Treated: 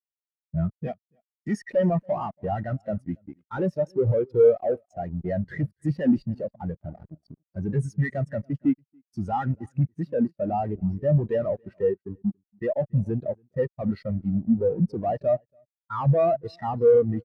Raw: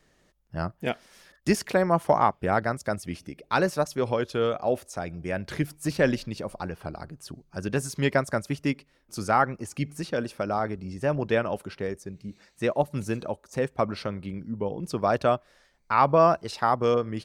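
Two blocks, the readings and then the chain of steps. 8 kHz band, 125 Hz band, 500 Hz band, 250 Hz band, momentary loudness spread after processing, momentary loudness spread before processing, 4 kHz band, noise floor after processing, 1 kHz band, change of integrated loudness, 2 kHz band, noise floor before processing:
below −15 dB, +5.5 dB, +2.0 dB, +3.5 dB, 12 LU, 13 LU, below −15 dB, below −85 dBFS, −6.0 dB, +1.0 dB, −10.0 dB, −66 dBFS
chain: parametric band 1,900 Hz +10 dB 0.24 octaves
fuzz pedal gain 43 dB, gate −39 dBFS
single-tap delay 282 ms −14 dB
every bin expanded away from the loudest bin 2.5 to 1

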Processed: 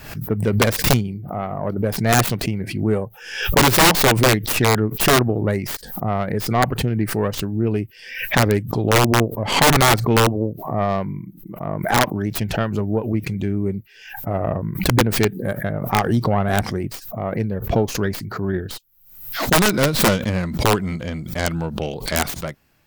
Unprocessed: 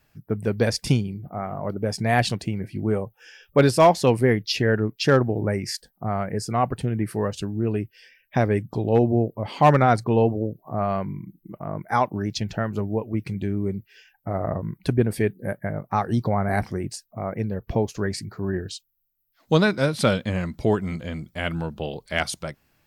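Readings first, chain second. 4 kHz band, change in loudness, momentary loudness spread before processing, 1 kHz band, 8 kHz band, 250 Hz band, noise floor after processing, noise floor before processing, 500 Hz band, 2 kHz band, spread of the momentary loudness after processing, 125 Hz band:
+9.5 dB, +4.5 dB, 12 LU, +4.0 dB, +13.0 dB, +3.5 dB, −44 dBFS, −68 dBFS, +2.0 dB, +7.5 dB, 13 LU, +3.5 dB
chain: stylus tracing distortion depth 0.43 ms
wrap-around overflow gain 11 dB
background raised ahead of every attack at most 78 dB per second
level +3.5 dB

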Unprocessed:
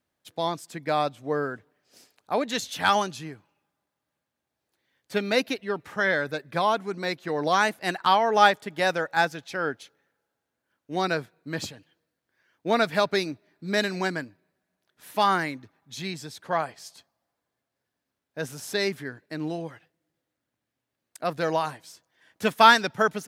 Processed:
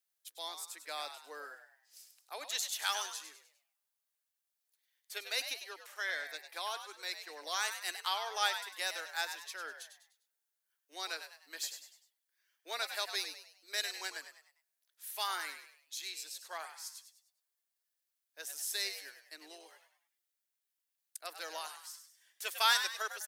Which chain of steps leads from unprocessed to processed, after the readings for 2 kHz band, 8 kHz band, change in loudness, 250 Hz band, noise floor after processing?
−11.5 dB, 0.0 dB, −12.0 dB, −32.0 dB, below −85 dBFS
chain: Butterworth high-pass 300 Hz 48 dB per octave
first difference
echo with shifted repeats 100 ms, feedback 40%, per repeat +90 Hz, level −9 dB

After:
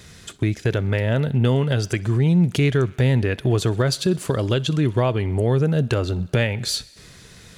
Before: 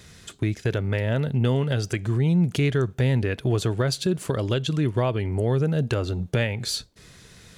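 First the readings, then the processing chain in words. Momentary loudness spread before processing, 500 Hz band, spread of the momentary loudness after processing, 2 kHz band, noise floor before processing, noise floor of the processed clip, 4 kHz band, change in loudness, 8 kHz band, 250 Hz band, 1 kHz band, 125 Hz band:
5 LU, +3.5 dB, 5 LU, +3.5 dB, −50 dBFS, −46 dBFS, +3.5 dB, +3.5 dB, +3.5 dB, +3.5 dB, +3.5 dB, +3.5 dB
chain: feedback echo with a high-pass in the loop 64 ms, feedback 77%, high-pass 390 Hz, level −24 dB
level +3.5 dB

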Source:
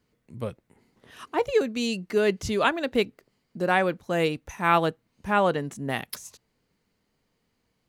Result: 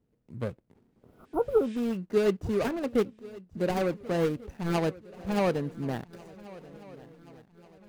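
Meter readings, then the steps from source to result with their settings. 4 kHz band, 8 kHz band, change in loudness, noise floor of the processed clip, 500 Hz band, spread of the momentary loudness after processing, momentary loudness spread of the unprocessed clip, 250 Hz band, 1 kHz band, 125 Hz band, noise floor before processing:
−10.0 dB, −8.5 dB, −3.5 dB, −72 dBFS, −2.0 dB, 20 LU, 13 LU, −0.5 dB, −10.0 dB, 0.0 dB, −75 dBFS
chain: running median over 41 samples
healed spectral selection 0:00.92–0:01.74, 1,500–9,900 Hz both
on a send: feedback echo with a long and a short gap by turns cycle 1,442 ms, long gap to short 3 to 1, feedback 47%, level −20 dB

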